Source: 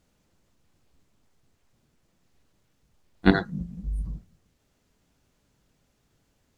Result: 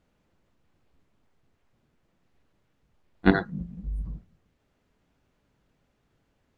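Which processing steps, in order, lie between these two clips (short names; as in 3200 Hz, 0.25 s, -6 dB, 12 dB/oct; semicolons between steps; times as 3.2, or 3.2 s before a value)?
tone controls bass -2 dB, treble -12 dB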